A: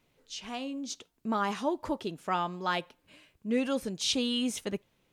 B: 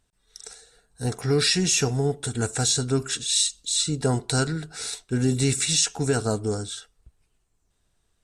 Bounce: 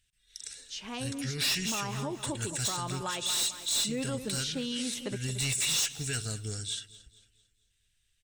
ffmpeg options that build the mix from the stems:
-filter_complex "[0:a]bandreject=f=710:w=16,adelay=400,volume=1.06,asplit=2[s0][s1];[s1]volume=0.224[s2];[1:a]firequalizer=gain_entry='entry(100,0);entry(230,-10);entry(940,-18);entry(1700,4);entry(2900,11);entry(4200,5)':delay=0.05:min_phase=1,asoftclip=type=hard:threshold=0.119,volume=0.531,asplit=2[s3][s4];[s4]volume=0.112[s5];[s2][s5]amix=inputs=2:normalize=0,aecho=0:1:224|448|672|896|1120|1344:1|0.41|0.168|0.0689|0.0283|0.0116[s6];[s0][s3][s6]amix=inputs=3:normalize=0,alimiter=level_in=1.06:limit=0.0631:level=0:latency=1:release=164,volume=0.944"

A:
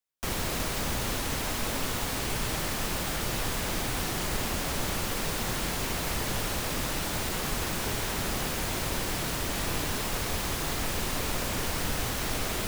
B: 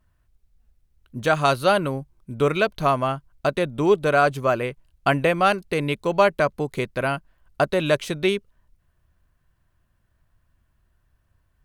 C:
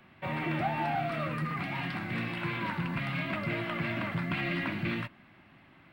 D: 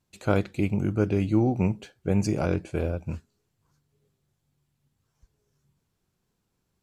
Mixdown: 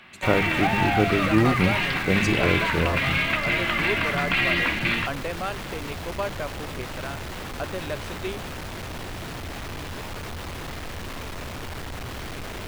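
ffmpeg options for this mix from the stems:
-filter_complex "[0:a]acrossover=split=3800[s0][s1];[s1]acompressor=threshold=0.00501:ratio=4:attack=1:release=60[s2];[s0][s2]amix=inputs=2:normalize=0,equalizer=f=88:t=o:w=0.77:g=7,asoftclip=type=hard:threshold=0.0188,volume=1.33[s3];[1:a]volume=0.251[s4];[2:a]equalizer=f=3500:w=0.33:g=12.5,volume=1.26[s5];[3:a]volume=1.33[s6];[s3][s4][s5][s6]amix=inputs=4:normalize=0,bandreject=f=50:t=h:w=6,bandreject=f=100:t=h:w=6,bandreject=f=150:t=h:w=6,bandreject=f=200:t=h:w=6"

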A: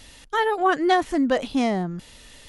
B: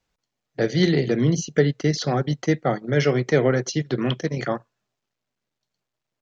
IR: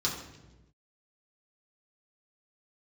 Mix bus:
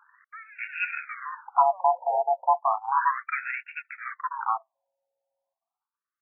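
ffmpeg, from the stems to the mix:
-filter_complex "[0:a]alimiter=limit=0.106:level=0:latency=1:release=182,acrusher=bits=6:mix=0:aa=0.000001,asoftclip=type=tanh:threshold=0.0168,volume=1.19[s0];[1:a]acontrast=76,aeval=exprs='val(0)*sin(2*PI*550*n/s)':c=same,adynamicsmooth=sensitivity=2.5:basefreq=1300,volume=0.944[s1];[s0][s1]amix=inputs=2:normalize=0,afftfilt=real='re*between(b*sr/1024,660*pow(2000/660,0.5+0.5*sin(2*PI*0.34*pts/sr))/1.41,660*pow(2000/660,0.5+0.5*sin(2*PI*0.34*pts/sr))*1.41)':imag='im*between(b*sr/1024,660*pow(2000/660,0.5+0.5*sin(2*PI*0.34*pts/sr))/1.41,660*pow(2000/660,0.5+0.5*sin(2*PI*0.34*pts/sr))*1.41)':win_size=1024:overlap=0.75"

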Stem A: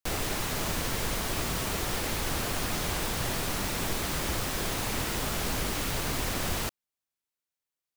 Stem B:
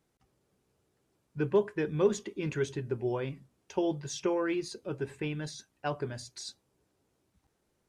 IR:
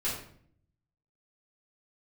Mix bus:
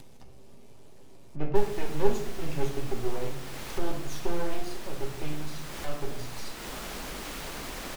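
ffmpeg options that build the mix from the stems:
-filter_complex "[0:a]equalizer=f=95:t=o:w=0.94:g=-13.5,adelay=1500,volume=0.266[s0];[1:a]equalizer=f=1400:t=o:w=0.51:g=-13.5,aeval=exprs='max(val(0),0)':c=same,volume=0.75,asplit=2[s1][s2];[s2]volume=0.668[s3];[2:a]atrim=start_sample=2205[s4];[s3][s4]afir=irnorm=-1:irlink=0[s5];[s0][s1][s5]amix=inputs=3:normalize=0,highshelf=f=7100:g=-4.5,acompressor=mode=upward:threshold=0.0355:ratio=2.5"

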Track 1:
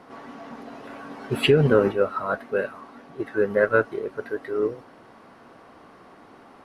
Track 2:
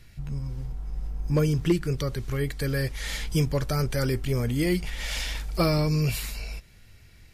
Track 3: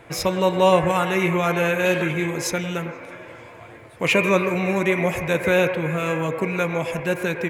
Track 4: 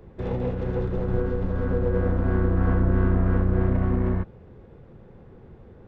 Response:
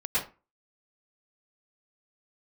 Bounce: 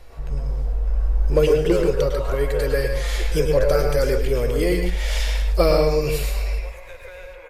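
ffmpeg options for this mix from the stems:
-filter_complex "[0:a]volume=0.237,asplit=2[s0][s1];[s1]volume=0.211[s2];[1:a]lowshelf=f=100:g=9.5,volume=0.944,asplit=2[s3][s4];[s4]volume=0.299[s5];[2:a]highpass=890,acompressor=threshold=0.0355:ratio=6,adelay=1600,volume=0.178,asplit=2[s6][s7];[s7]volume=0.266[s8];[4:a]atrim=start_sample=2205[s9];[s2][s5][s8]amix=inputs=3:normalize=0[s10];[s10][s9]afir=irnorm=-1:irlink=0[s11];[s0][s3][s6][s11]amix=inputs=4:normalize=0,equalizer=f=125:t=o:w=1:g=-11,equalizer=f=250:t=o:w=1:g=-6,equalizer=f=500:t=o:w=1:g=11"

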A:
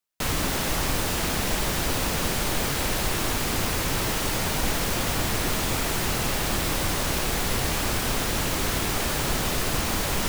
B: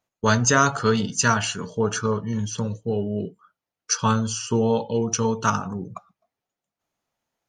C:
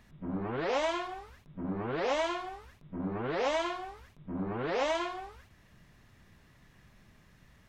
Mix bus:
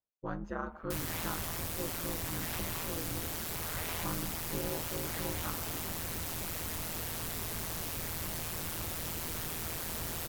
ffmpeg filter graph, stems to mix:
-filter_complex "[0:a]equalizer=f=15000:t=o:w=0.94:g=10.5,asoftclip=type=tanh:threshold=0.119,adelay=700,volume=0.316[s0];[1:a]lowpass=1200,volume=0.178,asplit=2[s1][s2];[2:a]highpass=1400,acompressor=threshold=0.01:ratio=6,adelay=450,volume=1.26[s3];[s2]apad=whole_len=358750[s4];[s3][s4]sidechaincompress=threshold=0.0126:ratio=8:attack=6:release=310[s5];[s0][s1][s5]amix=inputs=3:normalize=0,aeval=exprs='val(0)*sin(2*PI*82*n/s)':c=same"

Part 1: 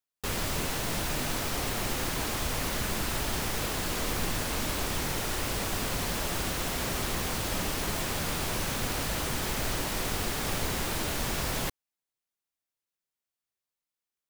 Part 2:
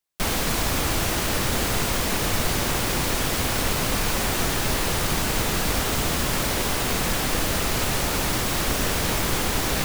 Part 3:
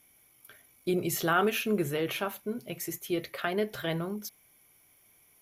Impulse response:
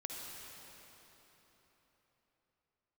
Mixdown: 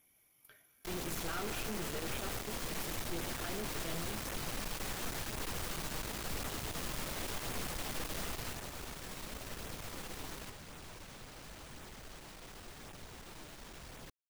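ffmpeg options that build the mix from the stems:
-filter_complex "[0:a]equalizer=f=14000:t=o:w=0.77:g=-6,asoftclip=type=tanh:threshold=0.0282,adelay=2400,volume=0.398[s0];[1:a]adelay=650,volume=0.531,afade=t=out:st=8.2:d=0.51:silence=0.316228[s1];[2:a]volume=0.75,asplit=2[s2][s3];[s3]volume=0.562[s4];[3:a]atrim=start_sample=2205[s5];[s4][s5]afir=irnorm=-1:irlink=0[s6];[s0][s1][s2][s6]amix=inputs=4:normalize=0,flanger=delay=0.1:depth=6.5:regen=-56:speed=0.93:shape=sinusoidal,aeval=exprs='(tanh(70.8*val(0)+0.65)-tanh(0.65))/70.8':c=same"

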